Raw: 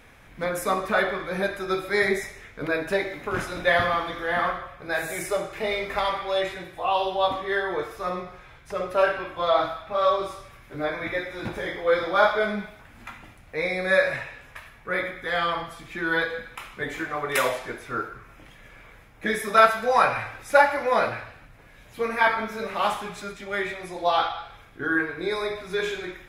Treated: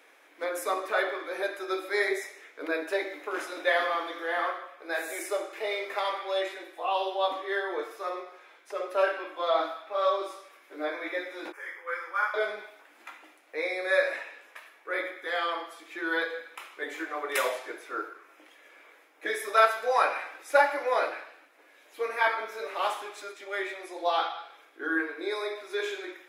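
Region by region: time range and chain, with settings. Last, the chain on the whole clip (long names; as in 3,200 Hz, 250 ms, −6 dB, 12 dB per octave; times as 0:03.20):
0:11.52–0:12.34: high-pass filter 560 Hz 24 dB per octave + phaser with its sweep stopped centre 1,600 Hz, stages 4 + one half of a high-frequency compander decoder only
whole clip: Chebyshev high-pass filter 300 Hz, order 5; every ending faded ahead of time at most 340 dB per second; level −4 dB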